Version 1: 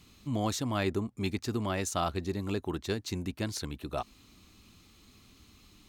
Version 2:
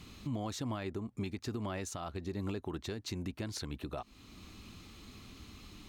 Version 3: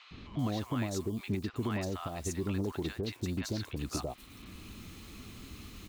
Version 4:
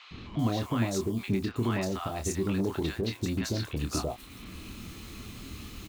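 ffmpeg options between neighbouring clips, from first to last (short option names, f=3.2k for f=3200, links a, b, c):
-af "acompressor=threshold=-35dB:ratio=3,highshelf=f=5.4k:g=-7.5,alimiter=level_in=11.5dB:limit=-24dB:level=0:latency=1:release=446,volume=-11.5dB,volume=7dB"
-filter_complex "[0:a]acrusher=bits=9:mix=0:aa=0.000001,acrossover=split=840|4400[a][b][c];[a]adelay=110[d];[c]adelay=390[e];[d][b][e]amix=inputs=3:normalize=0,volume=4.5dB"
-filter_complex "[0:a]asplit=2[a][b];[b]adelay=26,volume=-6.5dB[c];[a][c]amix=inputs=2:normalize=0,volume=4dB"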